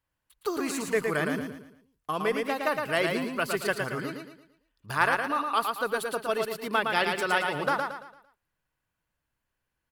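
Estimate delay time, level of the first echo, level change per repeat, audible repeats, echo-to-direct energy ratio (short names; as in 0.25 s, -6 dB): 0.113 s, -4.5 dB, -8.5 dB, 4, -4.0 dB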